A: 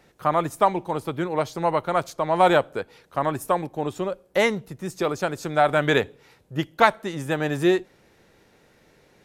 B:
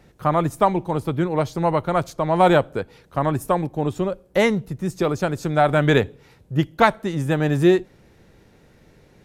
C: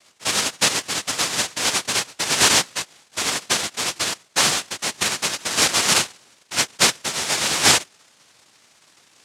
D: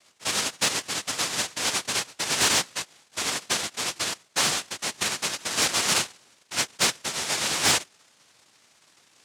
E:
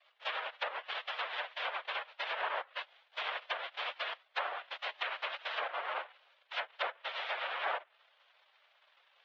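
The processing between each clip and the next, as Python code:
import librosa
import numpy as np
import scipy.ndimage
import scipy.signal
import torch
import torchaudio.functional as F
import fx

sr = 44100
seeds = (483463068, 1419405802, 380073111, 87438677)

y1 = fx.low_shelf(x, sr, hz=250.0, db=12.0)
y2 = fx.noise_vocoder(y1, sr, seeds[0], bands=1)
y2 = y2 * 10.0 ** (-1.5 / 20.0)
y3 = 10.0 ** (-8.0 / 20.0) * np.tanh(y2 / 10.0 ** (-8.0 / 20.0))
y3 = y3 * 10.0 ** (-4.5 / 20.0)
y4 = fx.spec_quant(y3, sr, step_db=15)
y4 = fx.env_lowpass_down(y4, sr, base_hz=1300.0, full_db=-21.5)
y4 = scipy.signal.sosfilt(scipy.signal.ellip(3, 1.0, 50, [570.0, 3400.0], 'bandpass', fs=sr, output='sos'), y4)
y4 = y4 * 10.0 ** (-4.0 / 20.0)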